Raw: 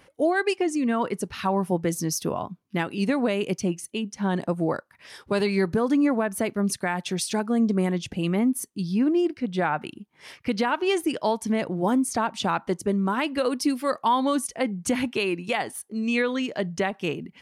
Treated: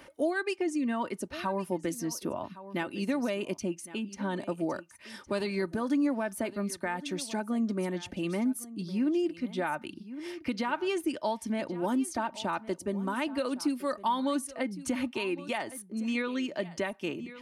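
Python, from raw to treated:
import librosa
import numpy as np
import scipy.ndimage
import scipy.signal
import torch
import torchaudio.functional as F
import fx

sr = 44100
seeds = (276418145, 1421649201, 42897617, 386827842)

y = x + 0.47 * np.pad(x, (int(3.3 * sr / 1000.0), 0))[:len(x)]
y = y + 10.0 ** (-18.5 / 20.0) * np.pad(y, (int(1110 * sr / 1000.0), 0))[:len(y)]
y = fx.band_squash(y, sr, depth_pct=40)
y = y * 10.0 ** (-8.0 / 20.0)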